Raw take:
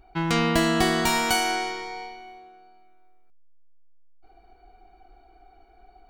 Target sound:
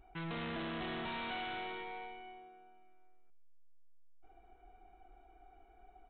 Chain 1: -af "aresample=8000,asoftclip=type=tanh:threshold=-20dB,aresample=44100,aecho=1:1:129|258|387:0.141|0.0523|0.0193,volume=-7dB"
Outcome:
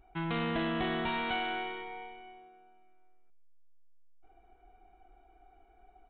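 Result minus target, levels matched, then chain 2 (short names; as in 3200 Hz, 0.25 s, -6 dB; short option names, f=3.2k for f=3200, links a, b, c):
soft clip: distortion -8 dB
-af "aresample=8000,asoftclip=type=tanh:threshold=-32dB,aresample=44100,aecho=1:1:129|258|387:0.141|0.0523|0.0193,volume=-7dB"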